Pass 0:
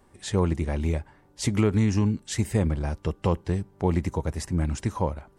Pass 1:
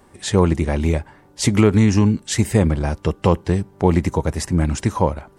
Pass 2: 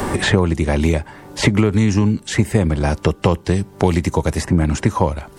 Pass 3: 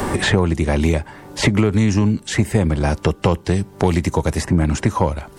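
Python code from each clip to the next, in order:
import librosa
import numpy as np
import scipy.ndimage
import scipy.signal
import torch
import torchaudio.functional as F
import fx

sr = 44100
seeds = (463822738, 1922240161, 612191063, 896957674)

y1 = fx.low_shelf(x, sr, hz=66.0, db=-7.5)
y1 = y1 * librosa.db_to_amplitude(9.0)
y2 = fx.band_squash(y1, sr, depth_pct=100)
y3 = 10.0 ** (-3.0 / 20.0) * np.tanh(y2 / 10.0 ** (-3.0 / 20.0))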